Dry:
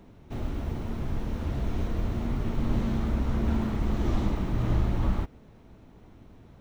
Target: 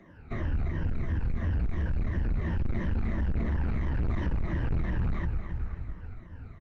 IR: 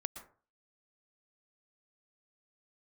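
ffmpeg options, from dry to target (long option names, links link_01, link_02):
-filter_complex "[0:a]afftfilt=real='re*pow(10,16/40*sin(2*PI*(1.2*log(max(b,1)*sr/1024/100)/log(2)-(-2.9)*(pts-256)/sr)))':imag='im*pow(10,16/40*sin(2*PI*(1.2*log(max(b,1)*sr/1024/100)/log(2)-(-2.9)*(pts-256)/sr)))':win_size=1024:overlap=0.75,aecho=1:1:270|540|810|1080:0.282|0.118|0.0497|0.0209,adynamicequalizer=threshold=0.00158:dfrequency=1300:dqfactor=3.7:tfrequency=1300:tqfactor=3.7:attack=5:release=100:ratio=0.375:range=2.5:mode=cutabove:tftype=bell,acrossover=split=120|660[link_01][link_02][link_03];[link_01]dynaudnorm=framelen=240:gausssize=3:maxgain=12dB[link_04];[link_03]equalizer=frequency=1700:width_type=o:width=0.91:gain=12.5[link_05];[link_04][link_02][link_05]amix=inputs=3:normalize=0,asplit=2[link_06][link_07];[link_07]adelay=12,volume=-10dB[link_08];[link_06][link_08]amix=inputs=2:normalize=0,asplit=2[link_09][link_10];[link_10]aeval=exprs='sgn(val(0))*max(abs(val(0))-0.0299,0)':channel_layout=same,volume=-5dB[link_11];[link_09][link_11]amix=inputs=2:normalize=0,lowpass=4400,bandreject=frequency=3400:width=6.2,asoftclip=type=tanh:threshold=-16dB,acompressor=threshold=-22dB:ratio=6,volume=-3.5dB" -ar 48000 -c:a libopus -b:a 24k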